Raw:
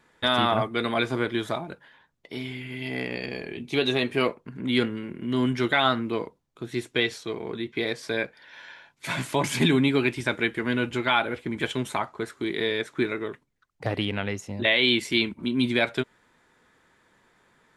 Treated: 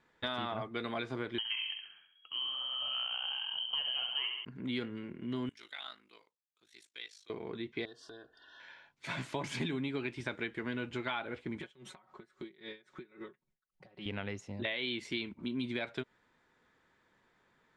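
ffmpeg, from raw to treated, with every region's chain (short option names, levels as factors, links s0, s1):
-filter_complex "[0:a]asettb=1/sr,asplit=3[s0][s1][s2];[s0]atrim=end=1.384[s3];[s1]atrim=start=1.38:end=4.45,asetpts=PTS-STARTPTS,afade=t=in:d=0.004:c=qsin,afade=t=out:st=3.066:d=0.004:c=qsin,aemphasis=mode=reproduction:type=riaa,aecho=1:1:67|134|201|268|335|402:0.473|0.232|0.114|0.0557|0.0273|0.0134,atrim=end_sample=135387,lowpass=f=2800:t=q:w=0.5098,lowpass=f=2800:t=q:w=0.6013,lowpass=f=2800:t=q:w=0.9,lowpass=f=2800:t=q:w=2.563,afreqshift=-3300[s4];[s2]atrim=start=4.446[s5];[s3][s4]acrossfade=d=0.004:c1=hsin:c2=qsin[s6];[s6][s5]acrossfade=d=0.004:c1=qsin:c2=hsin,asettb=1/sr,asplit=3[s7][s8][s9];[s7]atrim=end=5.494[s10];[s8]atrim=start=5.49:end=7.3,asetpts=PTS-STARTPTS,afade=t=in:d=0.004:c=qsin,afade=t=out:st=1.806:d=0.004:c=qsin,aderivative,aeval=exprs='val(0)*sin(2*PI*26*n/s)':c=same[s11];[s9]atrim=start=7.296[s12];[s10][s11]acrossfade=d=0.004:c1=hsin:c2=qsin[s13];[s13][s12]acrossfade=d=0.004:c1=qsin:c2=hsin,asettb=1/sr,asplit=3[s14][s15][s16];[s14]atrim=end=7.854[s17];[s15]atrim=start=7.85:end=8.6,asetpts=PTS-STARTPTS,afade=t=in:d=0.004:c=qsin,afade=t=out:st=0.746:d=0.004:c=qsin,aecho=1:1:2.8:0.72,atrim=end_sample=33075,acompressor=threshold=0.00891:ratio=4:attack=3.2:release=140:knee=1:detection=peak,asuperstop=centerf=2200:order=8:qfactor=2.2[s18];[s16]atrim=start=8.596[s19];[s17][s18]acrossfade=d=0.004:c1=hsin:c2=qsin[s20];[s20][s19]acrossfade=d=0.004:c1=qsin:c2=hsin,asettb=1/sr,asplit=3[s21][s22][s23];[s21]atrim=end=11.614[s24];[s22]atrim=start=11.61:end=14.06,asetpts=PTS-STARTPTS,afade=t=in:d=0.004:c=qsin,afade=t=out:st=2.446:d=0.004:c=qsin,aecho=1:1:5.4:0.93,atrim=end_sample=108045,acompressor=threshold=0.0251:ratio=4:attack=3.2:release=140:knee=1:detection=peak,aeval=exprs='val(0)*pow(10,-22*(0.5-0.5*cos(2*PI*3.7*n/s))/20)':c=same[s25];[s23]atrim=start=14.056[s26];[s24][s25]acrossfade=d=0.004:c1=hsin:c2=qsin[s27];[s27][s26]acrossfade=d=0.004:c1=qsin:c2=hsin,acompressor=threshold=0.0631:ratio=6,lowpass=6000,volume=0.376"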